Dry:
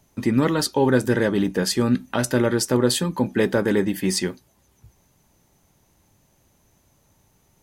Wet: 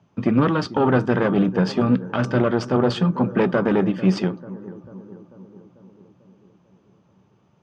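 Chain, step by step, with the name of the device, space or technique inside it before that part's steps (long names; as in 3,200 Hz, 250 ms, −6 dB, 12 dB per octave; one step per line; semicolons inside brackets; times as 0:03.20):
analogue delay pedal into a guitar amplifier (bucket-brigade delay 443 ms, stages 4,096, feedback 59%, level −16.5 dB; tube saturation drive 14 dB, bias 0.8; loudspeaker in its box 110–4,200 Hz, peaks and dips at 120 Hz +7 dB, 180 Hz +7 dB, 1,200 Hz +5 dB, 2,000 Hz −7 dB, 4,000 Hz −9 dB)
level +5.5 dB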